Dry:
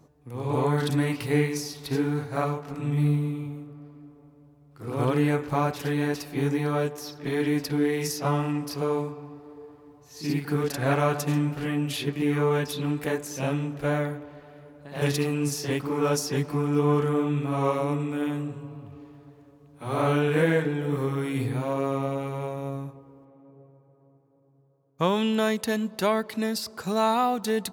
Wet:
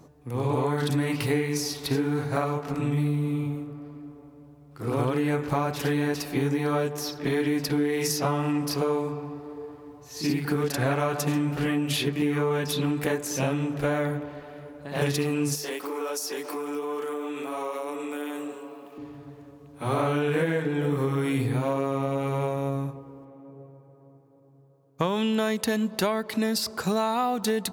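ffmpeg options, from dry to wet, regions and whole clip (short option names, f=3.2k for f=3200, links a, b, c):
-filter_complex "[0:a]asettb=1/sr,asplit=3[a][b][c];[a]atrim=end=15.554[d];[b]atrim=start=15.55:end=18.98,asetpts=PTS-STARTPTS,afade=t=in:d=0.004:c=qsin,afade=t=out:st=3.426:d=0.004:c=qsin,highpass=f=330:w=0.5412,highpass=f=330:w=1.3066,highshelf=f=8.8k:g=10.5,acompressor=threshold=-36dB:ratio=4:attack=3.2:release=140:knee=1:detection=peak[e];[c]atrim=start=18.976[f];[d][e]acrossfade=d=0.004:c1=hsin:c2=qsin[g];[g][f]acrossfade=d=0.004:c1=qsin:c2=hsin,bandreject=f=50:t=h:w=6,bandreject=f=100:t=h:w=6,bandreject=f=150:t=h:w=6,acompressor=threshold=-28dB:ratio=6,volume=6dB"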